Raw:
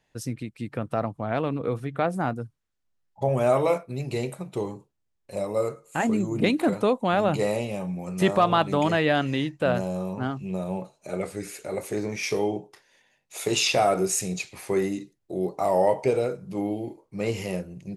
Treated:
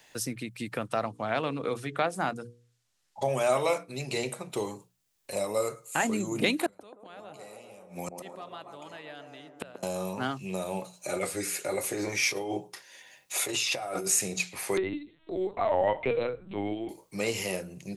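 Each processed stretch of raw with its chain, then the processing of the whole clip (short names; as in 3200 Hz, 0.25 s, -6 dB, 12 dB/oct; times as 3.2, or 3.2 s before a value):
0.87–4.5 LPF 9200 Hz + notches 60/120/180/240/300/360/420/480 Hz
6.66–9.83 flipped gate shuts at -23 dBFS, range -29 dB + band-limited delay 0.133 s, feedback 62%, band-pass 550 Hz, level -5 dB
10.93–14.07 negative-ratio compressor -29 dBFS + notch comb 220 Hz
14.77–16.89 LPC vocoder at 8 kHz pitch kept + upward compressor, threshold -34 dBFS
whole clip: tilt +2.5 dB/oct; notches 60/120/180 Hz; three-band squash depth 40%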